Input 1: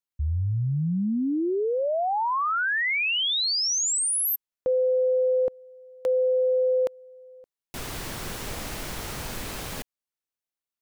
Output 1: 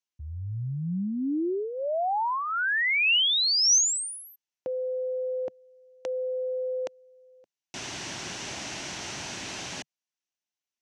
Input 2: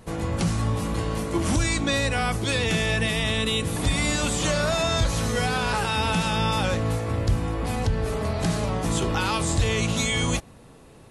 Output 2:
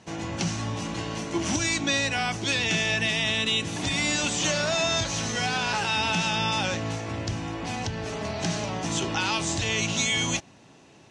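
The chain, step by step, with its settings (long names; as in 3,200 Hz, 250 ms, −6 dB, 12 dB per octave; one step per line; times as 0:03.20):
loudspeaker in its box 150–7,300 Hz, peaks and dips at 150 Hz −3 dB, 230 Hz −4 dB, 480 Hz −10 dB, 1,200 Hz −6 dB, 2,800 Hz +4 dB, 6,000 Hz +7 dB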